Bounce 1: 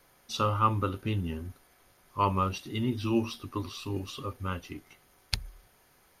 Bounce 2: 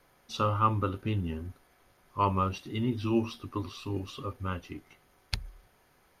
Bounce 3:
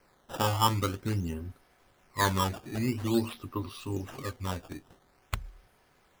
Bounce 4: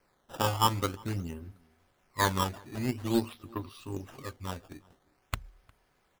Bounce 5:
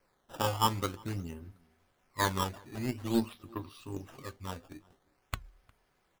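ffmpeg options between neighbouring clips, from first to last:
ffmpeg -i in.wav -af "highshelf=frequency=4100:gain=-7.5" out.wav
ffmpeg -i in.wav -af "acrusher=samples=12:mix=1:aa=0.000001:lfo=1:lforange=19.2:lforate=0.48" out.wav
ffmpeg -i in.wav -filter_complex "[0:a]aeval=exprs='0.211*(cos(1*acos(clip(val(0)/0.211,-1,1)))-cos(1*PI/2))+0.015*(cos(7*acos(clip(val(0)/0.211,-1,1)))-cos(7*PI/2))':channel_layout=same,asplit=2[link_01][link_02];[link_02]adelay=355.7,volume=-26dB,highshelf=frequency=4000:gain=-8[link_03];[link_01][link_03]amix=inputs=2:normalize=0" out.wav
ffmpeg -i in.wav -af "flanger=delay=1.7:depth=5.5:regen=85:speed=0.39:shape=triangular,volume=2dB" out.wav

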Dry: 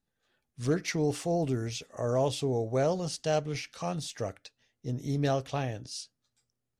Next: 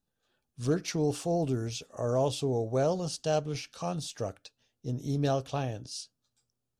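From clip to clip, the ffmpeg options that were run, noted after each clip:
ffmpeg -i in.wav -af "equalizer=frequency=2000:width_type=o:width=0.38:gain=-10.5" out.wav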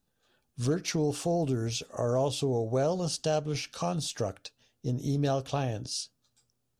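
ffmpeg -i in.wav -af "acompressor=threshold=-35dB:ratio=2,volume=6dB" out.wav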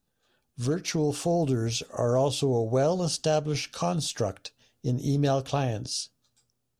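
ffmpeg -i in.wav -af "dynaudnorm=framelen=280:gausssize=7:maxgain=3.5dB" out.wav

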